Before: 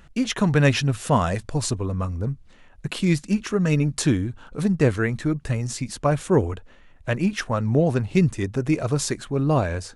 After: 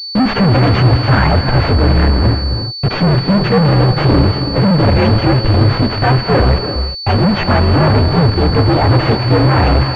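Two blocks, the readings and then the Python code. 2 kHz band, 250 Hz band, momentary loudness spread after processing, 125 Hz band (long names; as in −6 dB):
+10.5 dB, +9.0 dB, 4 LU, +12.5 dB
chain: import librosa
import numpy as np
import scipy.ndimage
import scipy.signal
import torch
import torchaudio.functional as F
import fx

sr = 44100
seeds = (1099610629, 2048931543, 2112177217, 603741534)

y = fx.partial_stretch(x, sr, pct=127)
y = fx.fuzz(y, sr, gain_db=44.0, gate_db=-41.0)
y = fx.rev_gated(y, sr, seeds[0], gate_ms=380, shape='rising', drr_db=7.5)
y = fx.pwm(y, sr, carrier_hz=4500.0)
y = F.gain(torch.from_numpy(y), 4.0).numpy()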